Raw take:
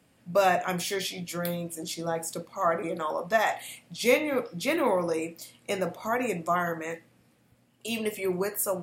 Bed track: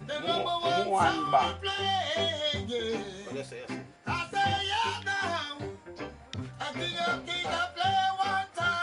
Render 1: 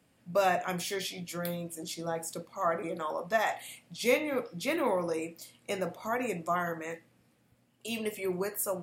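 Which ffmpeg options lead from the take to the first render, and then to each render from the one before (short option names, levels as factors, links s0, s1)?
-af "volume=0.631"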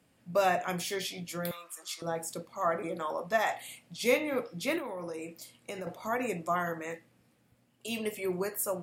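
-filter_complex "[0:a]asettb=1/sr,asplit=3[s0][s1][s2];[s0]atrim=end=1.514[s3];[s1]atrim=start=1.51:end=2.02,asetpts=PTS-STARTPTS,afade=t=in:d=0.004:c=qsin,afade=t=out:st=0.506:d=0.004:c=qsin,highpass=f=1200:t=q:w=10[s4];[s2]atrim=start=2.016[s5];[s3][s4]acrossfade=d=0.004:c1=hsin:c2=qsin[s6];[s6][s5]acrossfade=d=0.004:c1=qsin:c2=hsin,asettb=1/sr,asplit=3[s7][s8][s9];[s7]atrim=end=4.784[s10];[s8]atrim=start=4.78:end=5.87,asetpts=PTS-STARTPTS,afade=t=in:d=0.004:c=qsin,afade=t=out:st=1.086:d=0.004:c=qsin,acompressor=threshold=0.0178:ratio=6:attack=3.2:release=140:knee=1:detection=peak[s11];[s9]atrim=start=5.866[s12];[s10][s11]acrossfade=d=0.004:c1=hsin:c2=qsin[s13];[s13][s12]acrossfade=d=0.004:c1=qsin:c2=hsin"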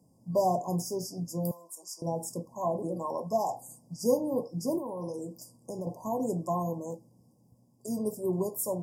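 -af "afftfilt=real='re*(1-between(b*sr/4096,1100,4700))':imag='im*(1-between(b*sr/4096,1100,4700))':win_size=4096:overlap=0.75,equalizer=f=150:t=o:w=1.8:g=7.5"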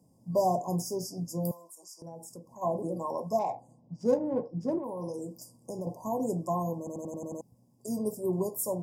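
-filter_complex "[0:a]asplit=3[s0][s1][s2];[s0]afade=t=out:st=1.68:d=0.02[s3];[s1]acompressor=threshold=0.00316:ratio=2:attack=3.2:release=140:knee=1:detection=peak,afade=t=in:st=1.68:d=0.02,afade=t=out:st=2.61:d=0.02[s4];[s2]afade=t=in:st=2.61:d=0.02[s5];[s3][s4][s5]amix=inputs=3:normalize=0,asettb=1/sr,asplit=3[s6][s7][s8];[s6]atrim=end=3.394[s9];[s7]atrim=start=3.39:end=4.84,asetpts=PTS-STARTPTS,afade=t=in:d=0.004:c=qsin,afade=t=out:st=1.446:d=0.004:c=qsin,adynamicsmooth=sensitivity=3:basefreq=2000[s10];[s8]atrim=start=4.836[s11];[s9][s10]acrossfade=d=0.004:c1=hsin:c2=qsin[s12];[s12][s11]acrossfade=d=0.004:c1=qsin:c2=hsin,asplit=8[s13][s14][s15][s16][s17][s18][s19][s20];[s13]atrim=end=6.872[s21];[s14]atrim=start=6.778:end=6.872[s22];[s15]atrim=start=6.778:end=6.872[s23];[s16]atrim=start=6.778:end=6.872[s24];[s17]atrim=start=6.778:end=6.872[s25];[s18]atrim=start=6.778:end=6.872[s26];[s19]atrim=start=6.778:end=6.872[s27];[s20]atrim=start=7.408[s28];[s21][s22]acrossfade=d=0.004:c1=hsin:c2=hsin[s29];[s29][s23]acrossfade=d=0.004:c1=hsin:c2=hsin[s30];[s30][s24]acrossfade=d=0.004:c1=hsin:c2=hsin[s31];[s31][s25]acrossfade=d=0.004:c1=hsin:c2=hsin[s32];[s32][s26]acrossfade=d=0.004:c1=hsin:c2=hsin[s33];[s33][s27]acrossfade=d=0.004:c1=hsin:c2=hsin[s34];[s34][s28]acrossfade=d=0.004:c1=hsin:c2=hsin"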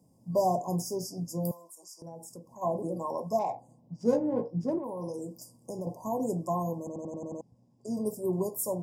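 -filter_complex "[0:a]asettb=1/sr,asplit=3[s0][s1][s2];[s0]atrim=end=4.054[s3];[s1]atrim=start=4.05:end=4.64,asetpts=PTS-STARTPTS,afade=t=in:d=0.004:c=qsin,afade=t=out:st=0.586:d=0.004:c=qsin,asplit=2[s4][s5];[s5]adelay=17,volume=0.631[s6];[s4][s6]amix=inputs=2:normalize=0,atrim=end_sample=26019[s7];[s2]atrim=start=4.636[s8];[s3][s7]acrossfade=d=0.004:c1=hsin:c2=qsin[s9];[s9][s8]acrossfade=d=0.004:c1=qsin:c2=hsin,asettb=1/sr,asplit=3[s10][s11][s12];[s10]atrim=end=6.894[s13];[s11]atrim=start=6.89:end=7.97,asetpts=PTS-STARTPTS,afade=t=in:d=0.004:c=qsin,afade=t=out:st=1.076:d=0.004:c=qsin,lowpass=5200[s14];[s12]atrim=start=7.966[s15];[s13][s14]acrossfade=d=0.004:c1=hsin:c2=qsin[s16];[s16][s15]acrossfade=d=0.004:c1=qsin:c2=hsin"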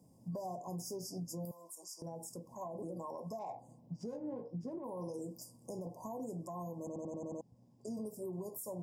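-af "acompressor=threshold=0.0224:ratio=6,alimiter=level_in=3.35:limit=0.0631:level=0:latency=1:release=244,volume=0.299"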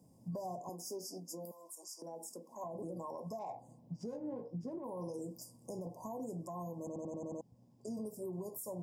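-filter_complex "[0:a]asettb=1/sr,asplit=3[s0][s1][s2];[s0]atrim=end=0.694[s3];[s1]atrim=start=0.69:end=2.64,asetpts=PTS-STARTPTS,afade=t=in:d=0.004:c=qsin,afade=t=out:st=1.946:d=0.004:c=qsin,highpass=f=230:w=0.5412,highpass=f=230:w=1.3066[s4];[s2]atrim=start=2.636[s5];[s3][s4]acrossfade=d=0.004:c1=hsin:c2=qsin[s6];[s6][s5]acrossfade=d=0.004:c1=qsin:c2=hsin"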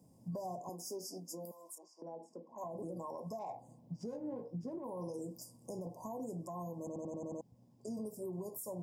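-filter_complex "[0:a]asettb=1/sr,asplit=3[s0][s1][s2];[s0]atrim=end=1.784[s3];[s1]atrim=start=1.78:end=2.58,asetpts=PTS-STARTPTS,afade=t=in:d=0.004:c=qsin,afade=t=out:st=0.796:d=0.004:c=qsin,lowpass=2400[s4];[s2]atrim=start=2.576[s5];[s3][s4]acrossfade=d=0.004:c1=hsin:c2=qsin[s6];[s6][s5]acrossfade=d=0.004:c1=qsin:c2=hsin"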